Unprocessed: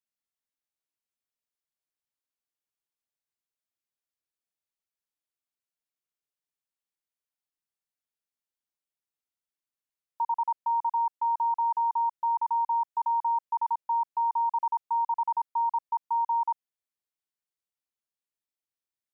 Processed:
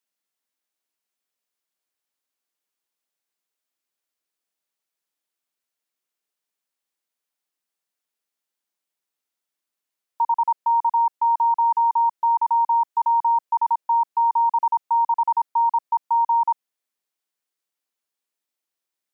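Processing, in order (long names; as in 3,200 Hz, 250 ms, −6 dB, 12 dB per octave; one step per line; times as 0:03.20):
high-pass filter 220 Hz 12 dB per octave
level +7.5 dB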